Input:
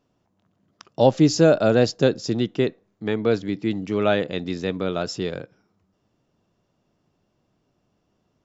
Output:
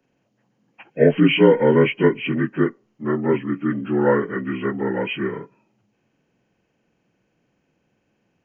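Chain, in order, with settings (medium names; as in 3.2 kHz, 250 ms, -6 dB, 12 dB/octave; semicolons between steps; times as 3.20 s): frequency axis rescaled in octaves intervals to 75%; treble shelf 2.6 kHz +8 dB; trim +3 dB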